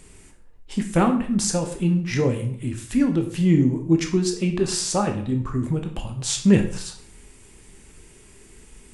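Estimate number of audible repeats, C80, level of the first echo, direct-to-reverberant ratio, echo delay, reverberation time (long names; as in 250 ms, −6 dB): no echo audible, 13.0 dB, no echo audible, 4.0 dB, no echo audible, 0.55 s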